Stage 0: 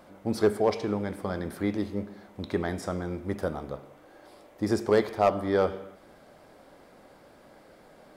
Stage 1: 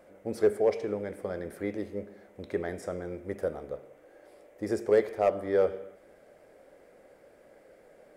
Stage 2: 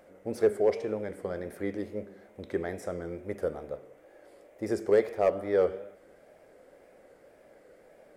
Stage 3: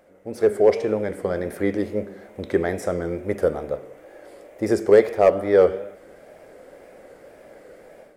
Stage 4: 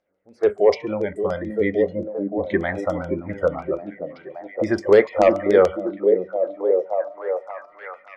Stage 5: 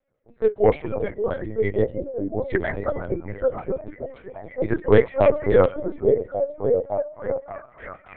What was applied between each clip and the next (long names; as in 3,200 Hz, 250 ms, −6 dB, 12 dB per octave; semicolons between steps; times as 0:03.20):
octave-band graphic EQ 125/250/500/1,000/2,000/4,000/8,000 Hz −3/−3/+10/−7/+6/−7/+3 dB; level −6.5 dB
tape wow and flutter 70 cents
automatic gain control gain up to 10.5 dB
noise reduction from a noise print of the clip's start 21 dB; auto-filter low-pass saw down 6.9 Hz 960–6,000 Hz; echo through a band-pass that steps 572 ms, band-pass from 260 Hz, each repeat 0.7 octaves, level −1 dB
linear-prediction vocoder at 8 kHz pitch kept; level −1.5 dB